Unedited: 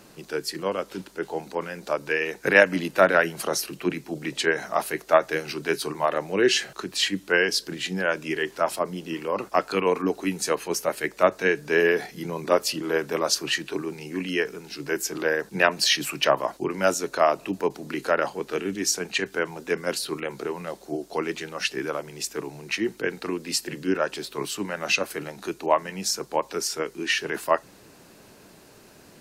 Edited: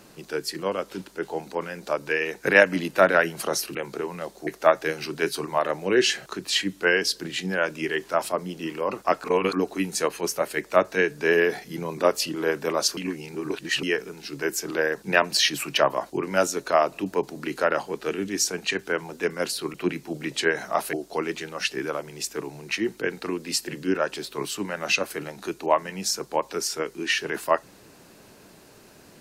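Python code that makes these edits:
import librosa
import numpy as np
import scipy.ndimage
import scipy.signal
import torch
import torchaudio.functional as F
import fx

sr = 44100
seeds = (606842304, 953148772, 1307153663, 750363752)

y = fx.edit(x, sr, fx.swap(start_s=3.75, length_s=1.19, other_s=20.21, other_length_s=0.72),
    fx.reverse_span(start_s=9.71, length_s=0.29),
    fx.reverse_span(start_s=13.44, length_s=0.86), tone=tone)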